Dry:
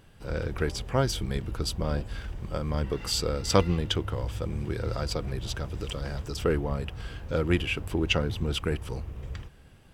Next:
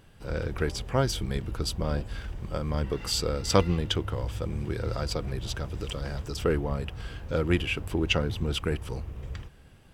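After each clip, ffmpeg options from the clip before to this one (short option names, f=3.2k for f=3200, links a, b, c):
-af anull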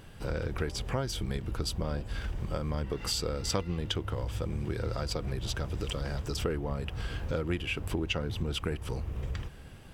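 -af "acompressor=threshold=-36dB:ratio=4,volume=5.5dB"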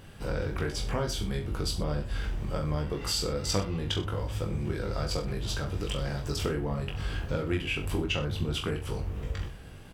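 -af "aecho=1:1:20|42|66.2|92.82|122.1:0.631|0.398|0.251|0.158|0.1"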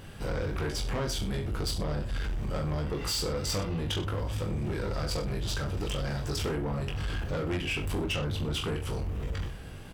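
-af "asoftclip=type=tanh:threshold=-30dB,volume=3.5dB"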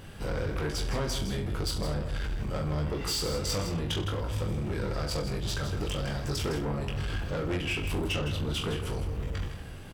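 -af "aecho=1:1:160:0.335"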